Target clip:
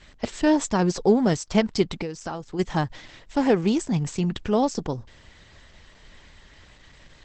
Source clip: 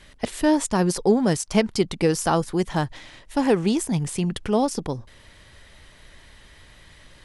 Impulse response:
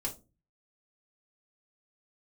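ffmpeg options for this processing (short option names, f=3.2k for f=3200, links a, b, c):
-filter_complex "[0:a]asplit=3[a][b][c];[a]afade=t=out:st=2.01:d=0.02[d];[b]acompressor=threshold=-29dB:ratio=6,afade=t=in:st=2.01:d=0.02,afade=t=out:st=2.58:d=0.02[e];[c]afade=t=in:st=2.58:d=0.02[f];[d][e][f]amix=inputs=3:normalize=0" -ar 48000 -c:a libopus -b:a 12k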